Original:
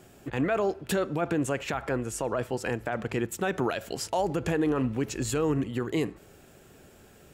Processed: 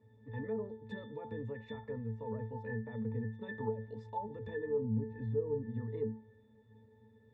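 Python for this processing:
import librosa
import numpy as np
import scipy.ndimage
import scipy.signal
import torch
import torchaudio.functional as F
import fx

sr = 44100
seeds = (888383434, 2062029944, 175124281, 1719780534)

y = fx.octave_resonator(x, sr, note='A', decay_s=0.32)
y = fx.env_lowpass_down(y, sr, base_hz=810.0, full_db=-36.5)
y = y * 10.0 ** (5.0 / 20.0)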